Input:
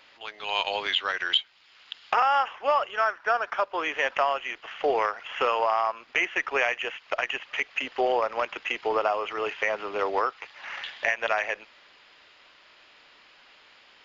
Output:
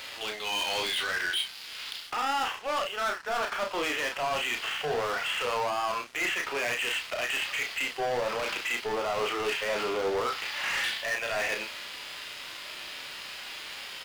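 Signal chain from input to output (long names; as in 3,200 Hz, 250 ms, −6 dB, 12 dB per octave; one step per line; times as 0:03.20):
dynamic equaliser 4,500 Hz, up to +6 dB, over −52 dBFS, Q 3.3
harmonic and percussive parts rebalanced percussive −13 dB
high-shelf EQ 2,700 Hz +10.5 dB
reversed playback
downward compressor 6 to 1, threshold −35 dBFS, peak gain reduction 16.5 dB
reversed playback
leveller curve on the samples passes 5
double-tracking delay 33 ms −5 dB
level −4.5 dB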